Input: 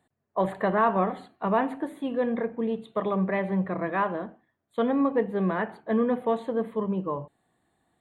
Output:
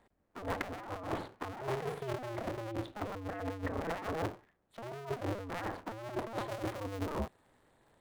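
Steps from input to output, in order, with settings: cycle switcher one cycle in 2, inverted; high shelf 3400 Hz -10 dB, from 6.49 s -4 dB; negative-ratio compressor -36 dBFS, ratio -1; gain -3.5 dB

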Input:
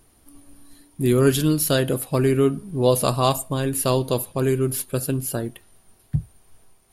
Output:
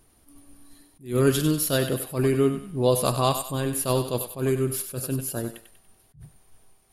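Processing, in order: on a send: thinning echo 96 ms, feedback 44%, high-pass 750 Hz, level -8 dB; on the sum: attack slew limiter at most 190 dB/s; gain -3 dB

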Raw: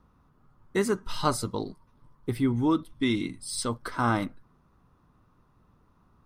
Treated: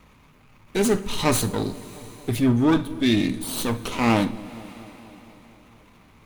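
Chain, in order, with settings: minimum comb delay 0.3 ms; transient shaper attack -4 dB, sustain +5 dB; on a send: dark delay 0.233 s, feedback 69%, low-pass 640 Hz, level -19.5 dB; on the sum: two-slope reverb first 0.44 s, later 3.7 s, from -18 dB, DRR 10.5 dB; mismatched tape noise reduction encoder only; gain +7 dB

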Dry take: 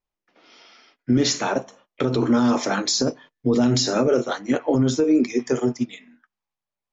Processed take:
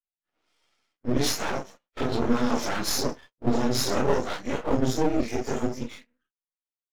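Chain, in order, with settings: phase scrambler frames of 0.1 s; low shelf 330 Hz -2 dB; half-wave rectifier; gate -47 dBFS, range -17 dB

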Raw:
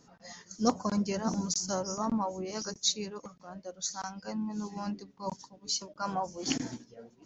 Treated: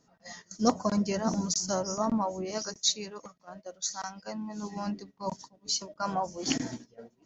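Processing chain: 2.58–4.63 low shelf 430 Hz -6.5 dB; gate -49 dBFS, range -9 dB; small resonant body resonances 640/1900 Hz, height 9 dB, ringing for 0.1 s; gain +2 dB

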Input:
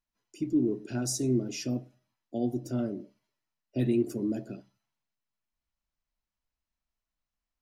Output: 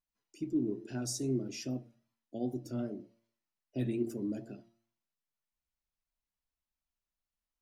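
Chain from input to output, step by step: vibrato 2.5 Hz 57 cents; de-hum 114.7 Hz, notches 8; gain -5.5 dB

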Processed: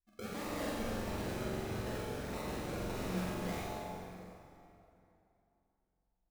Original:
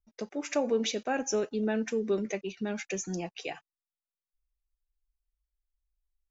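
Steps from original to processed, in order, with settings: gate -55 dBFS, range -27 dB; 0.69–2.95 inverse Chebyshev high-pass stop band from 190 Hz, stop band 80 dB; negative-ratio compressor -40 dBFS, ratio -1; limiter -49.5 dBFS, peak gain reduction 26.5 dB; decimation with a swept rate 38×, swing 60% 1.6 Hz; flutter echo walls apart 7.6 m, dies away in 0.73 s; plate-style reverb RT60 3 s, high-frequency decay 0.7×, DRR -4.5 dB; gain +11.5 dB

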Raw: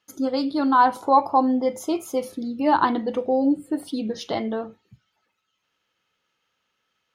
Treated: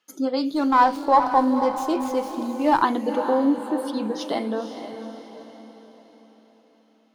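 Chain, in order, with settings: HPF 180 Hz 24 dB/oct; diffused feedback echo 0.481 s, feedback 47%, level -9 dB; 0.54–2.82 running maximum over 3 samples

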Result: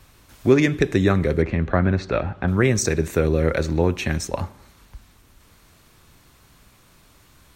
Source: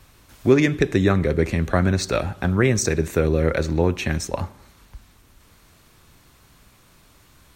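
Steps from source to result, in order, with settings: 1.42–2.48 LPF 2500 Hz 12 dB/oct

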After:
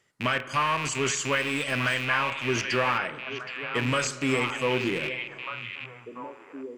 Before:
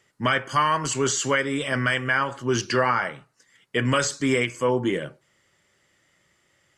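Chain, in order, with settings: rattling part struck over -37 dBFS, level -16 dBFS; 1.32–2.05 high shelf 8200 Hz +7.5 dB; delay with a stepping band-pass 0.771 s, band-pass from 2600 Hz, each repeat -1.4 oct, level -3.5 dB; spring tank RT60 2.2 s, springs 45 ms, chirp 55 ms, DRR 15 dB; gain -4.5 dB

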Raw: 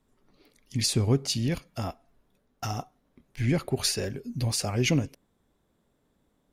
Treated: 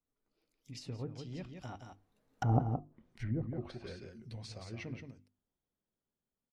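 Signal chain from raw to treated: Doppler pass-by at 2.6, 27 m/s, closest 2.1 m; notches 50/100/150/200/250/300/350 Hz; on a send: echo 0.171 s -6.5 dB; on the sum: treble ducked by the level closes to 530 Hz, closed at -42 dBFS; gain +9.5 dB

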